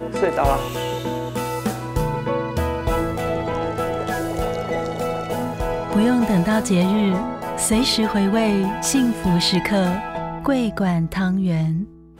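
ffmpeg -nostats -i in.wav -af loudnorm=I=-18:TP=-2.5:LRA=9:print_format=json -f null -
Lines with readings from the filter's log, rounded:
"input_i" : "-21.1",
"input_tp" : "-7.8",
"input_lra" : "4.7",
"input_thresh" : "-31.2",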